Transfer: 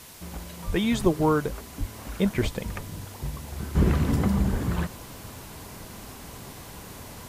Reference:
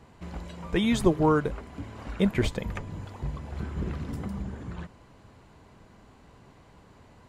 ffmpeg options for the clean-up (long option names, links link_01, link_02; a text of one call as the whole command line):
ffmpeg -i in.wav -filter_complex "[0:a]asplit=3[link_01][link_02][link_03];[link_01]afade=type=out:start_time=0.66:duration=0.02[link_04];[link_02]highpass=frequency=140:width=0.5412,highpass=frequency=140:width=1.3066,afade=type=in:start_time=0.66:duration=0.02,afade=type=out:start_time=0.78:duration=0.02[link_05];[link_03]afade=type=in:start_time=0.78:duration=0.02[link_06];[link_04][link_05][link_06]amix=inputs=3:normalize=0,asplit=3[link_07][link_08][link_09];[link_07]afade=type=out:start_time=1.79:duration=0.02[link_10];[link_08]highpass=frequency=140:width=0.5412,highpass=frequency=140:width=1.3066,afade=type=in:start_time=1.79:duration=0.02,afade=type=out:start_time=1.91:duration=0.02[link_11];[link_09]afade=type=in:start_time=1.91:duration=0.02[link_12];[link_10][link_11][link_12]amix=inputs=3:normalize=0,asplit=3[link_13][link_14][link_15];[link_13]afade=type=out:start_time=4.51:duration=0.02[link_16];[link_14]highpass=frequency=140:width=0.5412,highpass=frequency=140:width=1.3066,afade=type=in:start_time=4.51:duration=0.02,afade=type=out:start_time=4.63:duration=0.02[link_17];[link_15]afade=type=in:start_time=4.63:duration=0.02[link_18];[link_16][link_17][link_18]amix=inputs=3:normalize=0,afwtdn=0.005,asetnsamples=nb_out_samples=441:pad=0,asendcmd='3.75 volume volume -11dB',volume=0dB" out.wav